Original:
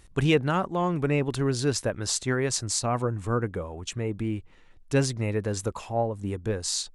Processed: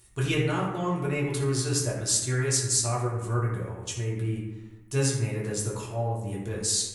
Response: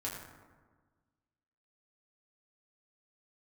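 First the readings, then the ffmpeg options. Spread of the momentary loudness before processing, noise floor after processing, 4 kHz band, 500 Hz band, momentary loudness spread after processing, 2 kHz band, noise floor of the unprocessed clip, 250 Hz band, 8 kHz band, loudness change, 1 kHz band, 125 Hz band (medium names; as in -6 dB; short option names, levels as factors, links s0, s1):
8 LU, -46 dBFS, +0.5 dB, -3.5 dB, 8 LU, -1.5 dB, -53 dBFS, -3.0 dB, +4.5 dB, 0.0 dB, -3.5 dB, +1.5 dB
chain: -filter_complex "[0:a]aemphasis=mode=production:type=75fm[s0];[1:a]atrim=start_sample=2205,asetrate=57330,aresample=44100[s1];[s0][s1]afir=irnorm=-1:irlink=0,volume=0.708"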